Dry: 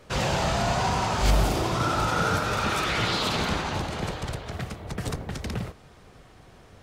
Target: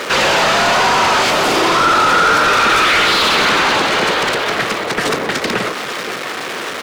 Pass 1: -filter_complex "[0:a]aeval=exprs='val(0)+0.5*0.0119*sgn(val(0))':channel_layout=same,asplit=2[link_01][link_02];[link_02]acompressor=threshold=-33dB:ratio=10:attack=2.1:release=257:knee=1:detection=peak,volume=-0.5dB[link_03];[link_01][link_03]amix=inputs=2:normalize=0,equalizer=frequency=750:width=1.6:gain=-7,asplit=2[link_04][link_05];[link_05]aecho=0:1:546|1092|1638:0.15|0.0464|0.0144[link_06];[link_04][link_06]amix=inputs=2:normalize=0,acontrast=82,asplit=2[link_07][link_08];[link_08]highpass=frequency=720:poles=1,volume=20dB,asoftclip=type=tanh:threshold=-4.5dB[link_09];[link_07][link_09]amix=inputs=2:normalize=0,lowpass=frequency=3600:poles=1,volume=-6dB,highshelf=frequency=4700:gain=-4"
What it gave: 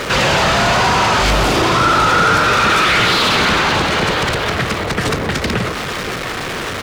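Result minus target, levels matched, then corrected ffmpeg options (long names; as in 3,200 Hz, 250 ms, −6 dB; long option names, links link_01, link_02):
downward compressor: peak gain reduction +10 dB; 250 Hz band +3.0 dB
-filter_complex "[0:a]aeval=exprs='val(0)+0.5*0.0119*sgn(val(0))':channel_layout=same,asplit=2[link_01][link_02];[link_02]acompressor=threshold=-22dB:ratio=10:attack=2.1:release=257:knee=1:detection=peak,volume=-0.5dB[link_03];[link_01][link_03]amix=inputs=2:normalize=0,highpass=280,equalizer=frequency=750:width=1.6:gain=-7,asplit=2[link_04][link_05];[link_05]aecho=0:1:546|1092|1638:0.15|0.0464|0.0144[link_06];[link_04][link_06]amix=inputs=2:normalize=0,acontrast=82,asplit=2[link_07][link_08];[link_08]highpass=frequency=720:poles=1,volume=20dB,asoftclip=type=tanh:threshold=-4.5dB[link_09];[link_07][link_09]amix=inputs=2:normalize=0,lowpass=frequency=3600:poles=1,volume=-6dB,highshelf=frequency=4700:gain=-4"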